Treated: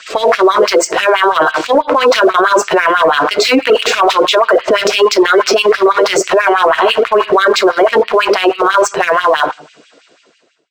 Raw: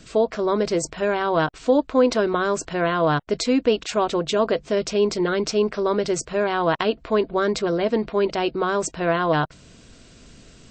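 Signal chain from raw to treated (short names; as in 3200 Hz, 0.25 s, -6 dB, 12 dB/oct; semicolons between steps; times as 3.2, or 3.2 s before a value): ending faded out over 2.89 s; shoebox room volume 45 m³, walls mixed, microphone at 0.31 m; LFO high-pass sine 6.1 Hz 380–2800 Hz; spectral gate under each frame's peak -30 dB strong; LPF 3800 Hz 6 dB/oct; sample leveller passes 1; dynamic EQ 1100 Hz, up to +6 dB, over -29 dBFS, Q 1.7; maximiser +19.5 dB; gain -1 dB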